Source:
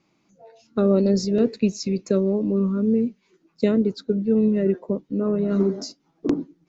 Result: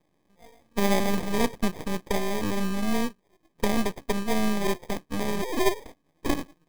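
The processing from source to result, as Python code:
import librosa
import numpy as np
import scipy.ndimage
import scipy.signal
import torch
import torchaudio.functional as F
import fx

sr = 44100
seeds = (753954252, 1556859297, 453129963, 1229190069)

y = fx.sine_speech(x, sr, at=(5.42, 5.86))
y = fx.sample_hold(y, sr, seeds[0], rate_hz=1400.0, jitter_pct=0)
y = np.maximum(y, 0.0)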